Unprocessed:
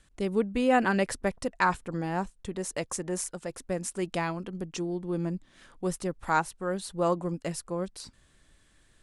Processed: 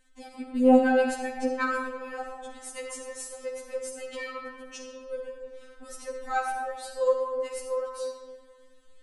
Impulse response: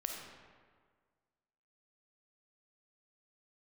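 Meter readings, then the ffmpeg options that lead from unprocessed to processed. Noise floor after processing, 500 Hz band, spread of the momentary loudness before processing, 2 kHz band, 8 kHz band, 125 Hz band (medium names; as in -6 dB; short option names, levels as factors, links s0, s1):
-54 dBFS, +3.0 dB, 9 LU, -0.5 dB, -3.5 dB, under -25 dB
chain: -filter_complex "[1:a]atrim=start_sample=2205[s0];[0:a][s0]afir=irnorm=-1:irlink=0,afftfilt=real='re*3.46*eq(mod(b,12),0)':imag='im*3.46*eq(mod(b,12),0)':win_size=2048:overlap=0.75"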